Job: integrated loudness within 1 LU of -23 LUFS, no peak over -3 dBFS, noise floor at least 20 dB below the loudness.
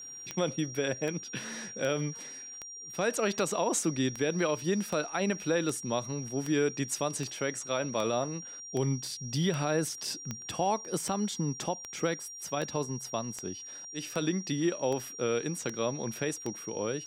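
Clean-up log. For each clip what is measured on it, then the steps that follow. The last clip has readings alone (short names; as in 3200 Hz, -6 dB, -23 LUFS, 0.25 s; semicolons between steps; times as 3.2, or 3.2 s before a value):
clicks 22; steady tone 5700 Hz; tone level -42 dBFS; loudness -32.5 LUFS; peak -16.5 dBFS; loudness target -23.0 LUFS
-> de-click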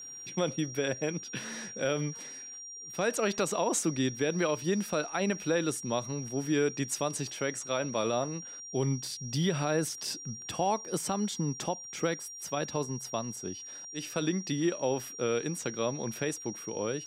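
clicks 0; steady tone 5700 Hz; tone level -42 dBFS
-> notch 5700 Hz, Q 30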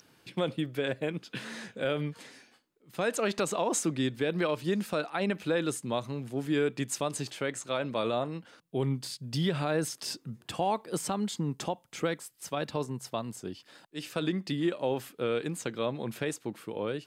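steady tone none; loudness -32.5 LUFS; peak -16.5 dBFS; loudness target -23.0 LUFS
-> gain +9.5 dB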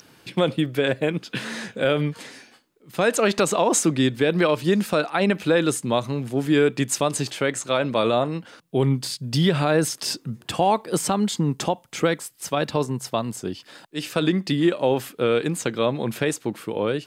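loudness -23.0 LUFS; peak -7.0 dBFS; noise floor -55 dBFS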